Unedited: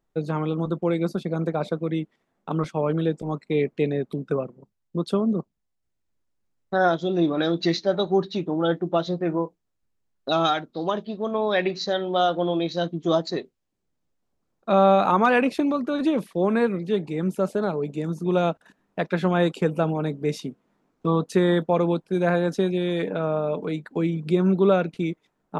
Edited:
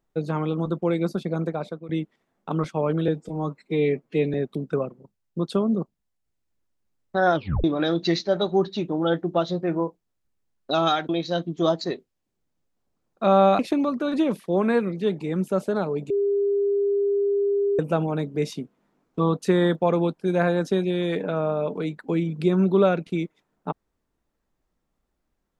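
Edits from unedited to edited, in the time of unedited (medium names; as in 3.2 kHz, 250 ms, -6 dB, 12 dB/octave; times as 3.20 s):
1.37–1.89 s: fade out, to -14.5 dB
3.08–3.92 s: stretch 1.5×
6.93 s: tape stop 0.29 s
10.67–12.55 s: delete
15.05–15.46 s: delete
17.97–19.66 s: bleep 402 Hz -19 dBFS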